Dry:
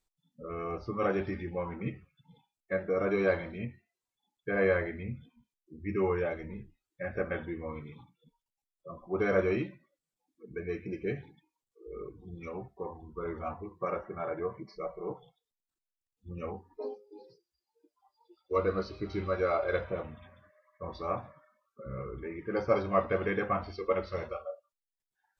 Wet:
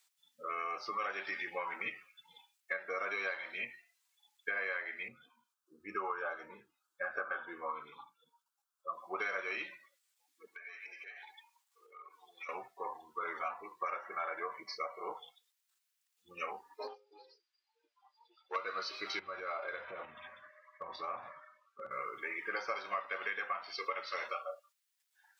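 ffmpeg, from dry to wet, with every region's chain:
ffmpeg -i in.wav -filter_complex "[0:a]asettb=1/sr,asplit=3[link_01][link_02][link_03];[link_01]atrim=end=5.084[link_04];[link_02]atrim=start=5.08:end=8.93,asetpts=PTS-STARTPTS,afade=type=in:duration=0.004:curve=qsin,afade=type=out:start_time=3.846:duration=0.004:curve=qsin,highshelf=frequency=1700:width_type=q:width=3:gain=-7.5,bandreject=frequency=1900:width=7.2[link_05];[link_03]atrim=start=8.926[link_06];[link_04][link_05]acrossfade=duration=0.004:curve1=hsin:curve2=qsin[link_07];[link_07][link_06]acrossfade=duration=0.004:curve1=qsin:curve2=hsin,asettb=1/sr,asplit=3[link_08][link_09][link_10];[link_08]atrim=end=10.474[link_11];[link_09]atrim=start=10.47:end=12.49,asetpts=PTS-STARTPTS,afade=type=in:duration=0.004:curve=qsin,afade=type=out:start_time=2.016:duration=0.004:curve=qsin,highpass=frequency=840:width_type=q:width=3.1,acompressor=threshold=-55dB:ratio=10:attack=3.2:release=140:knee=1:detection=peak[link_12];[link_10]atrim=start=12.486[link_13];[link_11][link_12]acrossfade=duration=0.004:curve1=hsin:curve2=qsin[link_14];[link_14][link_13]acrossfade=duration=0.004:curve1=qsin:curve2=hsin,asettb=1/sr,asplit=3[link_15][link_16][link_17];[link_15]atrim=end=16.874[link_18];[link_16]atrim=start=16.87:end=18.56,asetpts=PTS-STARTPTS,afade=type=in:duration=0.004:curve=qsin,afade=type=out:start_time=1.686:duration=0.004:curve=qsin,highpass=280,lowpass=3600,aeval=exprs='(tanh(28.2*val(0)+0.6)-tanh(0.6))/28.2':channel_layout=same[link_19];[link_17]atrim=start=18.556[link_20];[link_18][link_19]acrossfade=duration=0.004:curve1=hsin:curve2=qsin[link_21];[link_21][link_20]acrossfade=duration=0.004:curve1=qsin:curve2=hsin,asettb=1/sr,asplit=3[link_22][link_23][link_24];[link_22]atrim=end=19.194[link_25];[link_23]atrim=start=19.19:end=21.91,asetpts=PTS-STARTPTS,afade=type=in:duration=0.004:curve=qsin,afade=type=out:start_time=2.716:duration=0.004:curve=qsin,aemphasis=mode=reproduction:type=riaa,acompressor=threshold=-35dB:ratio=12:attack=3.2:release=140:knee=1:detection=peak[link_26];[link_24]atrim=start=21.906[link_27];[link_25][link_26]acrossfade=duration=0.004:curve1=hsin:curve2=qsin[link_28];[link_28][link_27]acrossfade=duration=0.004:curve1=qsin:curve2=hsin,highpass=1400,acompressor=threshold=-48dB:ratio=8,volume=13.5dB" out.wav

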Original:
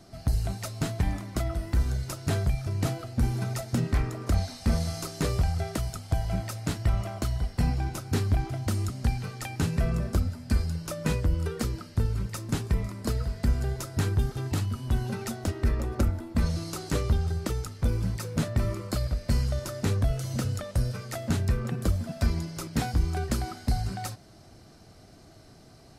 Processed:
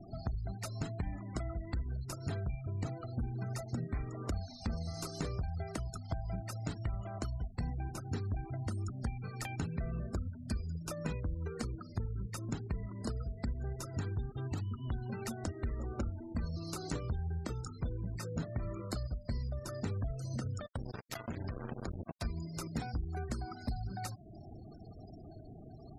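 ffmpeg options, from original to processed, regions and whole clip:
ffmpeg -i in.wav -filter_complex "[0:a]asettb=1/sr,asplit=3[link_01][link_02][link_03];[link_01]atrim=end=16.834[link_04];[link_02]atrim=start=16.83:end=18.87,asetpts=PTS-STARTPTS,afade=type=in:duration=0.004:curve=qsin,afade=type=out:start_time=2.036:duration=0.004:curve=qsin,equalizer=frequency=11000:width=5.3:gain=-3.5,asplit=2[link_05][link_06];[link_06]adelay=24,volume=-8dB[link_07];[link_05][link_07]amix=inputs=2:normalize=0,atrim=end_sample=89964[link_08];[link_03]atrim=start=18.866[link_09];[link_04][link_08]acrossfade=duration=0.004:curve1=hsin:curve2=qsin[link_10];[link_10][link_09]acrossfade=duration=0.004:curve1=qsin:curve2=hsin,asettb=1/sr,asplit=3[link_11][link_12][link_13];[link_11]atrim=end=20.664[link_14];[link_12]atrim=start=20.66:end=22.25,asetpts=PTS-STARTPTS,afade=type=in:duration=0.004:curve=qsin,afade=type=out:start_time=1.586:duration=0.004:curve=qsin,equalizer=frequency=8600:width_type=o:width=0.29:gain=-8.5,acompressor=threshold=-30dB:ratio=6:attack=3.2:release=140:knee=1:detection=peak,acrusher=bits=4:mix=0:aa=0.5[link_15];[link_13]atrim=start=22.246[link_16];[link_14][link_15]acrossfade=duration=0.004:curve1=hsin:curve2=qsin[link_17];[link_17][link_16]acrossfade=duration=0.004:curve1=qsin:curve2=hsin,acompressor=threshold=-42dB:ratio=3,equalizer=frequency=550:width=6.1:gain=-2.5,afftfilt=real='re*gte(hypot(re,im),0.00398)':imag='im*gte(hypot(re,im),0.00398)':win_size=1024:overlap=0.75,volume=3dB" out.wav

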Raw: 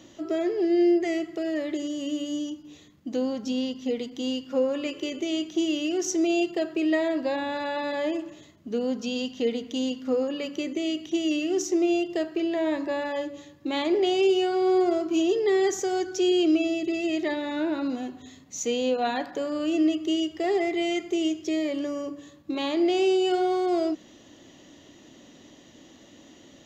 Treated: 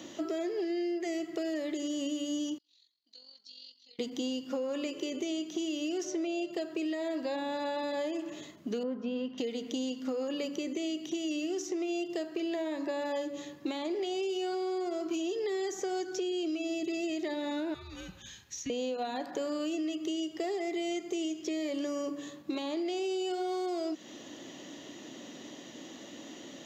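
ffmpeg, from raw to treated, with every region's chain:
ffmpeg -i in.wav -filter_complex "[0:a]asettb=1/sr,asplit=3[link_01][link_02][link_03];[link_01]atrim=end=2.584[link_04];[link_02]atrim=start=2.58:end=3.99,asetpts=PTS-STARTPTS,afade=type=in:duration=0.004:curve=qsin,afade=type=out:start_time=1.406:duration=0.004:curve=qsin,bandpass=frequency=4300:width_type=q:width=15,tremolo=f=45:d=0.571[link_05];[link_03]atrim=start=3.986[link_06];[link_04][link_05]acrossfade=duration=0.004:curve1=hsin:curve2=qsin[link_07];[link_07][link_06]acrossfade=duration=0.004:curve1=qsin:curve2=hsin,asettb=1/sr,asplit=3[link_08][link_09][link_10];[link_08]atrim=end=6.044[link_11];[link_09]atrim=start=6.04:end=6.51,asetpts=PTS-STARTPTS,afade=type=in:duration=0.004:curve=qsin,afade=type=out:start_time=0.466:duration=0.004:curve=qsin,aeval=exprs='val(0)+0.00631*sin(2*PI*600*n/s)':channel_layout=same,highshelf=frequency=6300:gain=-12[link_12];[link_10]atrim=start=6.506[link_13];[link_11][link_12]acrossfade=duration=0.004:curve1=hsin:curve2=qsin[link_14];[link_14][link_13]acrossfade=duration=0.004:curve1=qsin:curve2=hsin,asettb=1/sr,asplit=3[link_15][link_16][link_17];[link_15]atrim=end=8.834[link_18];[link_16]atrim=start=8.83:end=9.38,asetpts=PTS-STARTPTS,afade=type=in:duration=0.004:curve=qsin,afade=type=out:start_time=0.546:duration=0.004:curve=qsin,lowpass=1200,bandreject=frequency=770:width=11[link_19];[link_17]atrim=start=9.376[link_20];[link_18][link_19]acrossfade=duration=0.004:curve1=hsin:curve2=qsin[link_21];[link_21][link_20]acrossfade=duration=0.004:curve1=qsin:curve2=hsin,asettb=1/sr,asplit=3[link_22][link_23][link_24];[link_22]atrim=end=17.744[link_25];[link_23]atrim=start=17.74:end=18.7,asetpts=PTS-STARTPTS,afade=type=in:duration=0.004:curve=qsin,afade=type=out:start_time=0.956:duration=0.004:curve=qsin,equalizer=frequency=750:width_type=o:width=1.3:gain=-14,acompressor=threshold=-33dB:ratio=3:attack=3.2:release=140:knee=1:detection=peak,afreqshift=-200[link_26];[link_24]atrim=start=18.696[link_27];[link_25][link_26]acrossfade=duration=0.004:curve1=hsin:curve2=qsin[link_28];[link_28][link_27]acrossfade=duration=0.004:curve1=qsin:curve2=hsin,highpass=180,alimiter=limit=-23.5dB:level=0:latency=1:release=327,acrossover=split=1000|4300[link_29][link_30][link_31];[link_29]acompressor=threshold=-38dB:ratio=4[link_32];[link_30]acompressor=threshold=-53dB:ratio=4[link_33];[link_31]acompressor=threshold=-51dB:ratio=4[link_34];[link_32][link_33][link_34]amix=inputs=3:normalize=0,volume=5dB" out.wav

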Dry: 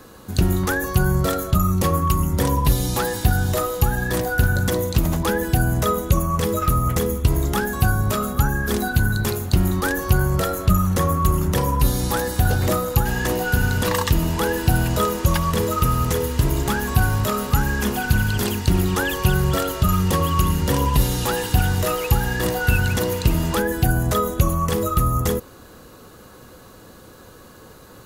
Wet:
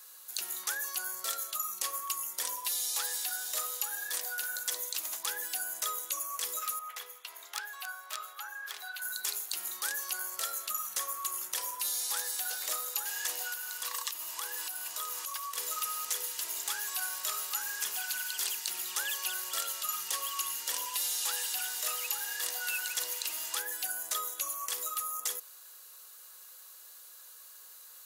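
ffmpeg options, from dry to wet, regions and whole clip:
ffmpeg -i in.wav -filter_complex "[0:a]asettb=1/sr,asplit=3[link_01][link_02][link_03];[link_01]atrim=end=6.794[link_04];[link_02]atrim=start=6.79:end=9.02,asetpts=PTS-STARTPTS,afade=type=in:duration=0.004:curve=qsin,afade=type=out:start_time=2.226:duration=0.004:curve=qsin,highpass=110,acrossover=split=530 4000:gain=0.141 1 0.112[link_05][link_06][link_07];[link_05][link_06][link_07]amix=inputs=3:normalize=0,aeval=exprs='(mod(6.31*val(0)+1,2)-1)/6.31':channel_layout=same[link_08];[link_03]atrim=start=9.016[link_09];[link_04][link_08]acrossfade=duration=0.004:curve1=hsin:curve2=qsin[link_10];[link_10][link_09]acrossfade=duration=0.004:curve1=qsin:curve2=hsin,asettb=1/sr,asplit=3[link_11][link_12][link_13];[link_11]atrim=end=13.474[link_14];[link_12]atrim=start=13.47:end=15.58,asetpts=PTS-STARTPTS,afade=type=in:duration=0.004:curve=qsin,afade=type=out:start_time=2.106:duration=0.004:curve=qsin,equalizer=frequency=1100:width_type=o:width=0.25:gain=10,acompressor=threshold=-21dB:ratio=4:attack=3.2:release=140:knee=1:detection=peak[link_15];[link_13]atrim=start=15.576[link_16];[link_14][link_15]acrossfade=duration=0.004:curve1=hsin:curve2=qsin[link_17];[link_17][link_16]acrossfade=duration=0.004:curve1=qsin:curve2=hsin,highpass=570,acrossover=split=9200[link_18][link_19];[link_19]acompressor=threshold=-40dB:ratio=4:attack=1:release=60[link_20];[link_18][link_20]amix=inputs=2:normalize=0,aderivative" out.wav

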